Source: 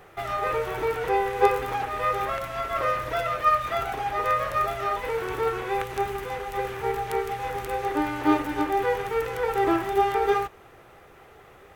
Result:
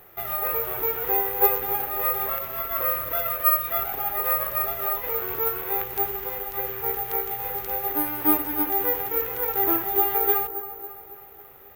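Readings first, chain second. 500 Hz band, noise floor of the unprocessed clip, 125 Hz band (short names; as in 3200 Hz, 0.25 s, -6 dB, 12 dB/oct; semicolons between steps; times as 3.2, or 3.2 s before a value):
-4.0 dB, -51 dBFS, -5.5 dB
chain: dark delay 0.274 s, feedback 53%, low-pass 1600 Hz, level -12 dB; careless resampling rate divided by 3×, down none, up zero stuff; gain -4.5 dB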